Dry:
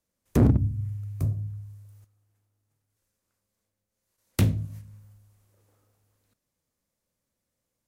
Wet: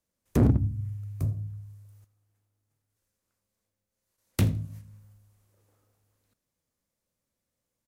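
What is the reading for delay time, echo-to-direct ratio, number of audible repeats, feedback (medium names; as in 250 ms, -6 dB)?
81 ms, -21.5 dB, 2, 26%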